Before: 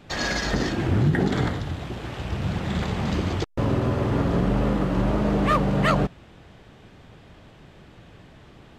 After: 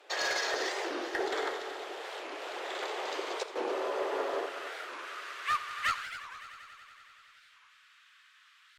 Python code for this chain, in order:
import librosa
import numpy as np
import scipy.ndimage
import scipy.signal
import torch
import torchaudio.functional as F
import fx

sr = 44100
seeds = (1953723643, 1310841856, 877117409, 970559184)

y = fx.steep_highpass(x, sr, hz=fx.steps((0.0, 380.0), (4.45, 1200.0)), slope=48)
y = fx.clip_asym(y, sr, top_db=-21.0, bottom_db=-18.5)
y = fx.echo_heads(y, sr, ms=93, heads='all three', feedback_pct=68, wet_db=-16.5)
y = fx.record_warp(y, sr, rpm=45.0, depth_cents=250.0)
y = F.gain(torch.from_numpy(y), -4.0).numpy()